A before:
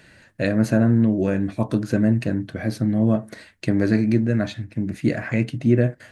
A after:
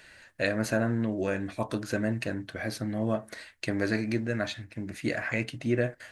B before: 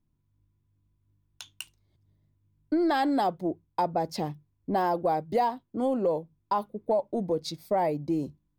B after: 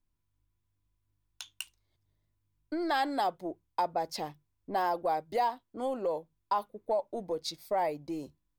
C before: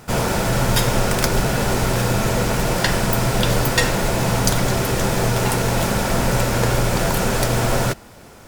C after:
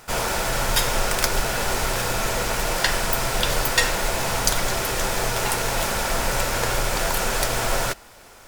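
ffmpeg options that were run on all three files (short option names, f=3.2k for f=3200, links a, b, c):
-af "equalizer=f=160:w=0.45:g=-13.5"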